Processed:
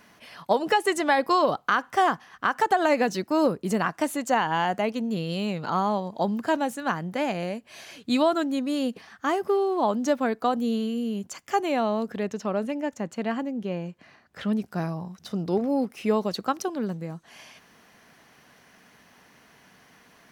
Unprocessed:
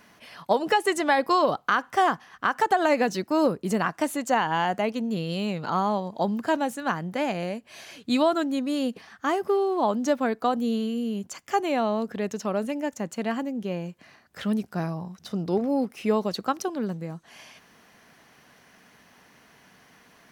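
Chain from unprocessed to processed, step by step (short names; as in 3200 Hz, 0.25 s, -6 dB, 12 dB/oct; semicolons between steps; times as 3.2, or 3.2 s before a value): 12.23–14.62 high shelf 6900 Hz -11 dB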